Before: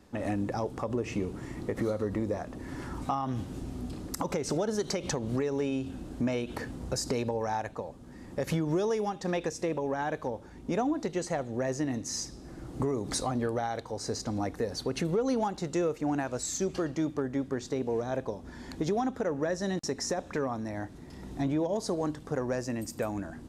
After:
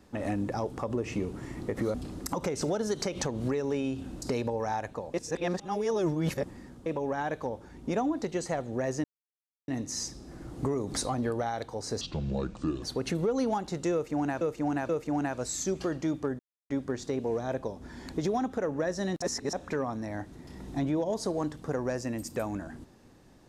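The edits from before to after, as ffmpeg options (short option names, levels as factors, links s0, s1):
-filter_complex "[0:a]asplit=13[s0][s1][s2][s3][s4][s5][s6][s7][s8][s9][s10][s11][s12];[s0]atrim=end=1.942[s13];[s1]atrim=start=3.818:end=6.102[s14];[s2]atrim=start=7.028:end=7.952[s15];[s3]atrim=start=7.948:end=9.672,asetpts=PTS-STARTPTS,areverse[s16];[s4]atrim=start=9.668:end=11.85,asetpts=PTS-STARTPTS,afade=t=out:st=2.178:d=0.004:c=hsin,apad=pad_dur=0.64[s17];[s5]atrim=start=11.85:end=14.184,asetpts=PTS-STARTPTS,afade=t=in:d=0.004:c=hsin[s18];[s6]atrim=start=14.18:end=14.73,asetpts=PTS-STARTPTS,asetrate=29547,aresample=44100,atrim=end_sample=36201,asetpts=PTS-STARTPTS[s19];[s7]atrim=start=14.726:end=16.312[s20];[s8]atrim=start=15.828:end=16.312[s21];[s9]atrim=start=15.828:end=17.33,asetpts=PTS-STARTPTS,afade=t=out:st=1.498:d=0.004:c=hsin,apad=pad_dur=0.31[s22];[s10]atrim=start=17.33:end=19.852,asetpts=PTS-STARTPTS,afade=t=in:d=0.004:c=hsin[s23];[s11]atrim=start=19.848:end=20.162,asetpts=PTS-STARTPTS,areverse[s24];[s12]atrim=start=20.158[s25];[s13][s14]acrossfade=d=0.004:c1=hsin:c2=hsin[s26];[s26][s15]acrossfade=d=0.004:c1=hsin:c2=hsin[s27];[s27][s16]acrossfade=d=0.004:c1=hsin:c2=hsin[s28];[s17][s18]concat=n=2:v=0:a=1[s29];[s28][s29]acrossfade=d=0.004:c1=hsin:c2=hsin[s30];[s30][s19]acrossfade=d=0.004:c1=hsin:c2=hsin[s31];[s31][s20]acrossfade=d=0.004:c1=hsin:c2=hsin[s32];[s32][s21]acrossfade=d=0.004:c1=hsin:c2=hsin[s33];[s22][s23]concat=n=2:v=0:a=1[s34];[s33][s34]acrossfade=d=0.004:c1=hsin:c2=hsin[s35];[s35][s24]acrossfade=d=0.004:c1=hsin:c2=hsin[s36];[s36][s25]acrossfade=d=0.004:c1=hsin:c2=hsin"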